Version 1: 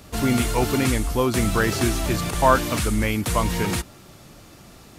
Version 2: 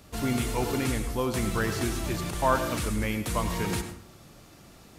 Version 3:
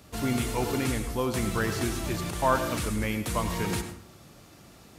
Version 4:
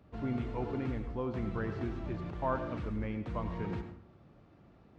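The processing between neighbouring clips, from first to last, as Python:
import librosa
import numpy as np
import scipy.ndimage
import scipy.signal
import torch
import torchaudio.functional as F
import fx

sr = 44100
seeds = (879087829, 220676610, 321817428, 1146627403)

y1 = fx.rider(x, sr, range_db=10, speed_s=2.0)
y1 = fx.rev_plate(y1, sr, seeds[0], rt60_s=0.52, hf_ratio=0.55, predelay_ms=80, drr_db=8.5)
y1 = F.gain(torch.from_numpy(y1), -7.5).numpy()
y2 = scipy.signal.sosfilt(scipy.signal.butter(2, 45.0, 'highpass', fs=sr, output='sos'), y1)
y3 = fx.spacing_loss(y2, sr, db_at_10k=44)
y3 = F.gain(torch.from_numpy(y3), -5.5).numpy()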